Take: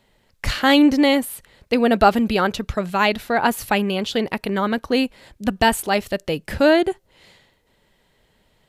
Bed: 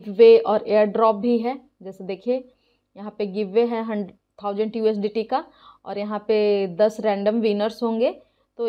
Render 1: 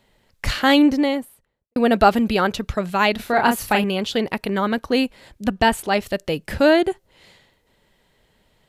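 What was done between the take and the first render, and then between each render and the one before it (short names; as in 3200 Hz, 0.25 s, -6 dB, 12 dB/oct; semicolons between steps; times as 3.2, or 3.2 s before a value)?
0.62–1.76 studio fade out; 3.16–3.84 doubler 33 ms -4.5 dB; 5.47–6.01 high shelf 5500 Hz -> 9700 Hz -8.5 dB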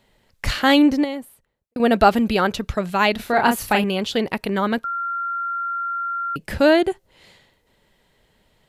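1.04–1.8 compressor 1.5:1, threshold -34 dBFS; 4.84–6.36 bleep 1380 Hz -22.5 dBFS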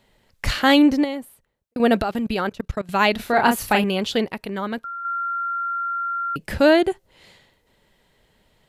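2.02–2.89 level quantiser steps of 23 dB; 4.25–5.05 gain -6 dB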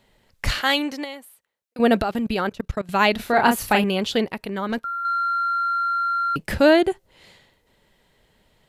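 0.61–1.79 HPF 1200 Hz 6 dB/oct; 4.69–6.55 sample leveller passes 1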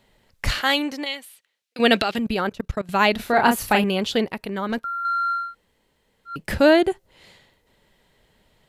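1.06–2.18 weighting filter D; 5.43–6.37 room tone, crossfade 0.24 s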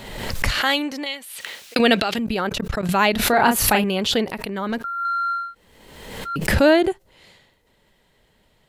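backwards sustainer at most 44 dB/s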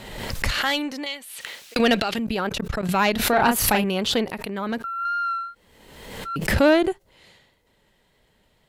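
tube stage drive 5 dB, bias 0.5; wow and flutter 28 cents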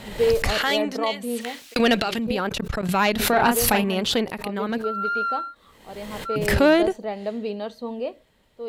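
add bed -8.5 dB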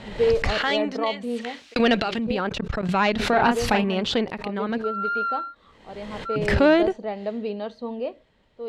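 air absorption 110 m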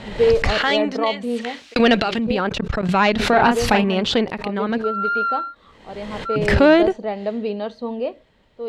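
gain +4.5 dB; limiter -3 dBFS, peak gain reduction 1.5 dB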